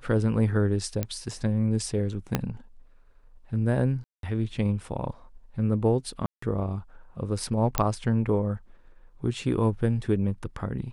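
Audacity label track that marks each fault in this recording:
1.030000	1.030000	click −14 dBFS
2.350000	2.350000	click −9 dBFS
4.040000	4.230000	drop-out 192 ms
6.260000	6.420000	drop-out 164 ms
7.780000	7.780000	click −6 dBFS

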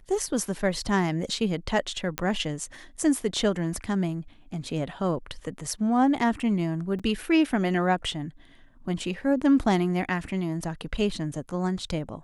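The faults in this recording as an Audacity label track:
2.180000	2.180000	click −10 dBFS
6.990000	7.000000	drop-out 5.6 ms

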